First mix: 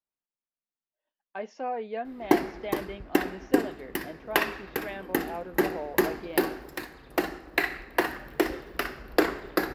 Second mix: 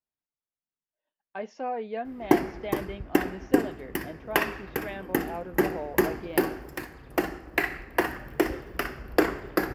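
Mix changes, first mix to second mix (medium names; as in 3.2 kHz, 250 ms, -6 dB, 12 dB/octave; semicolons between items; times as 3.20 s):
background: add peaking EQ 3.9 kHz -10 dB 0.28 oct; master: add peaking EQ 91 Hz +9 dB 1.6 oct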